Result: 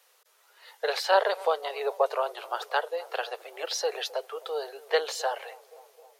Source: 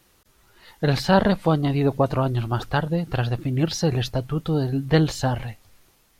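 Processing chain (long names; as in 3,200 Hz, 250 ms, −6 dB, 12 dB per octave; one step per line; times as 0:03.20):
Butterworth high-pass 430 Hz 72 dB per octave
on a send: bucket-brigade delay 261 ms, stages 2,048, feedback 68%, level −21 dB
on the sum: level −2 dB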